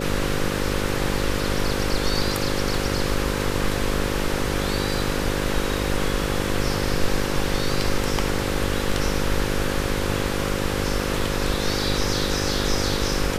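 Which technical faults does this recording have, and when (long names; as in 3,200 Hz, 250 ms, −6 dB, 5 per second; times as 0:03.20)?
mains buzz 50 Hz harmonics 11 −27 dBFS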